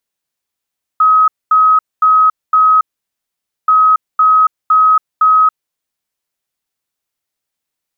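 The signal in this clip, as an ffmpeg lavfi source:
-f lavfi -i "aevalsrc='0.531*sin(2*PI*1270*t)*clip(min(mod(mod(t,2.68),0.51),0.28-mod(mod(t,2.68),0.51))/0.005,0,1)*lt(mod(t,2.68),2.04)':d=5.36:s=44100"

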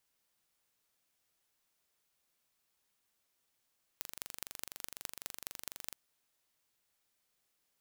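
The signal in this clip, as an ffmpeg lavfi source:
-f lavfi -i "aevalsrc='0.282*eq(mod(n,1838),0)*(0.5+0.5*eq(mod(n,9190),0))':d=1.95:s=44100"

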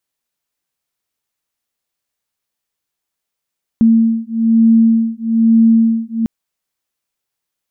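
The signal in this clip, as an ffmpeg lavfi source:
-f lavfi -i "aevalsrc='0.266*(sin(2*PI*226*t)+sin(2*PI*227.1*t))':d=2.45:s=44100"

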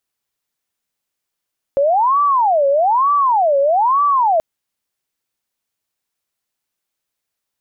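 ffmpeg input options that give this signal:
-f lavfi -i "aevalsrc='0.282*sin(2*PI*(855.5*t-304.5/(2*PI*1.1)*sin(2*PI*1.1*t)))':d=2.63:s=44100"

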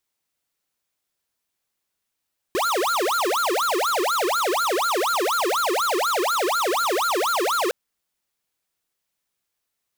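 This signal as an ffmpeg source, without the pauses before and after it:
-f lavfi -i "aevalsrc='0.0794*(2*lt(mod((877.5*t-532.5/(2*PI*4.1)*sin(2*PI*4.1*t)),1),0.5)-1)':d=5.16:s=44100"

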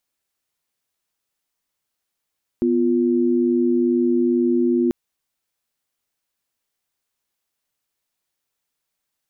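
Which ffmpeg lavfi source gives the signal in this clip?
-f lavfi -i "aevalsrc='0.126*(sin(2*PI*246.94*t)+sin(2*PI*349.23*t))':d=2.29:s=44100"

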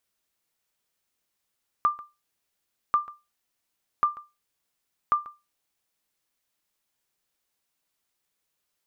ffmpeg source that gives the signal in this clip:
-f lavfi -i "aevalsrc='0.211*(sin(2*PI*1190*mod(t,1.09))*exp(-6.91*mod(t,1.09)/0.24)+0.112*sin(2*PI*1190*max(mod(t,1.09)-0.14,0))*exp(-6.91*max(mod(t,1.09)-0.14,0)/0.24))':d=4.36:s=44100"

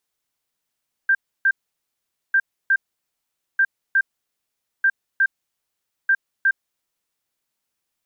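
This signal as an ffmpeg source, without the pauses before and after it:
-f lavfi -i "aevalsrc='0.224*sin(2*PI*1580*t)*clip(min(mod(mod(t,1.25),0.36),0.06-mod(mod(t,1.25),0.36))/0.005,0,1)*lt(mod(t,1.25),0.72)':d=6.25:s=44100"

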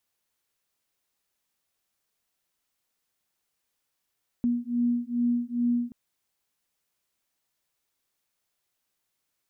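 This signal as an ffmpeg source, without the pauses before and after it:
-f lavfi -i "aevalsrc='0.0473*(sin(2*PI*239*t)+sin(2*PI*241.4*t))':d=1.48:s=44100"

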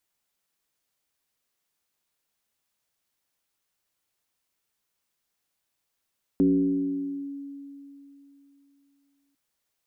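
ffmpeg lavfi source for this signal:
-f lavfi -i "aevalsrc='0.158*pow(10,-3*t/3.2)*sin(2*PI*280*t+0.74*clip(1-t/0.94,0,1)*sin(2*PI*0.36*280*t))':d=2.95:s=44100"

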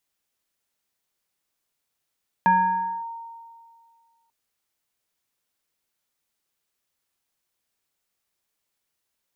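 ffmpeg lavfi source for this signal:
-f lavfi -i "aevalsrc='0.224*pow(10,-3*t/2.02)*sin(2*PI*922*t+0.6*clip(1-t/0.59,0,1)*sin(2*PI*0.8*922*t))':d=1.84:s=44100"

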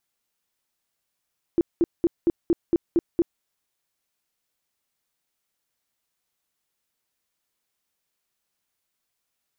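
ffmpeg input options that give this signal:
-f lavfi -i "aevalsrc='0.178*sin(2*PI*339*mod(t,0.23))*lt(mod(t,0.23),10/339)':d=1.84:s=44100"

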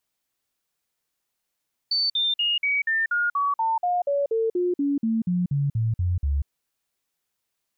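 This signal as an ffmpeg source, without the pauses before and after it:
-f lavfi -i "aevalsrc='0.1*clip(min(mod(t,0.24),0.19-mod(t,0.24))/0.005,0,1)*sin(2*PI*4530*pow(2,-floor(t/0.24)/3)*mod(t,0.24))':d=4.56:s=44100"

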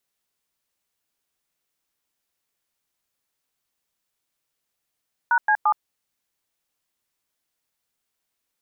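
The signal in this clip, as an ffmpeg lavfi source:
-f lavfi -i "aevalsrc='0.126*clip(min(mod(t,0.172),0.07-mod(t,0.172))/0.002,0,1)*(eq(floor(t/0.172),0)*(sin(2*PI*941*mod(t,0.172))+sin(2*PI*1477*mod(t,0.172)))+eq(floor(t/0.172),1)*(sin(2*PI*852*mod(t,0.172))+sin(2*PI*1633*mod(t,0.172)))+eq(floor(t/0.172),2)*(sin(2*PI*852*mod(t,0.172))+sin(2*PI*1209*mod(t,0.172))))':d=0.516:s=44100"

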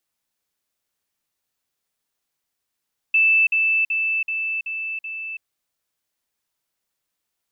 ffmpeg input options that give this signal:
-f lavfi -i "aevalsrc='pow(10,(-13-3*floor(t/0.38))/20)*sin(2*PI*2640*t)*clip(min(mod(t,0.38),0.33-mod(t,0.38))/0.005,0,1)':d=2.28:s=44100"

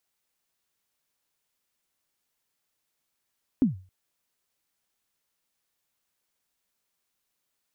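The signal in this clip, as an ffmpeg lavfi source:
-f lavfi -i "aevalsrc='0.2*pow(10,-3*t/0.36)*sin(2*PI*(290*0.135/log(93/290)*(exp(log(93/290)*min(t,0.135)/0.135)-1)+93*max(t-0.135,0)))':d=0.27:s=44100"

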